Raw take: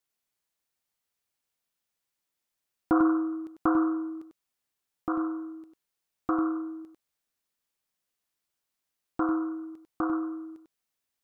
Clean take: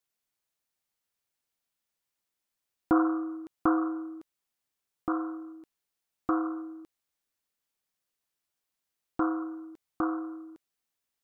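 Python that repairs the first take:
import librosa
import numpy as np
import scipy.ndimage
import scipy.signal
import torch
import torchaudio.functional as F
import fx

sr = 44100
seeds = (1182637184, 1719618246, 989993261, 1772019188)

y = fx.fix_echo_inverse(x, sr, delay_ms=97, level_db=-7.0)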